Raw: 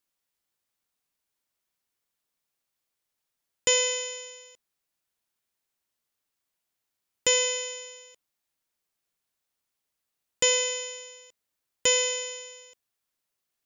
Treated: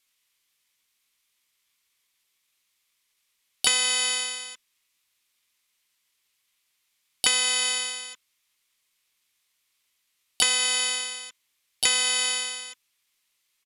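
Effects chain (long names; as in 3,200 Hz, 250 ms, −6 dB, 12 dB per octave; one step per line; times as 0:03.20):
high shelf with overshoot 1,600 Hz +9.5 dB, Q 3
downward compressor 10 to 1, threshold −21 dBFS, peak gain reduction 13.5 dB
pitch-shifted copies added −12 semitones −9 dB, +7 semitones 0 dB
downsampling to 32,000 Hz
level −1.5 dB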